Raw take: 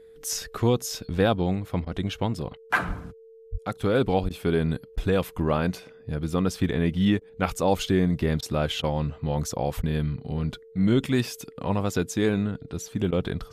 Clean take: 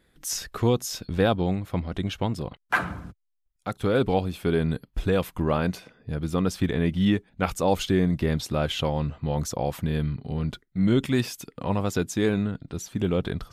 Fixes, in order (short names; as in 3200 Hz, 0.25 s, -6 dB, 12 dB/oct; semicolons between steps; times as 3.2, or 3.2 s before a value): notch 450 Hz, Q 30; de-plosive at 2.87/3.51/4.22/9.76; interpolate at 1.85/4.29/4.96/7.2/8.41/8.82/9.82/13.11, 13 ms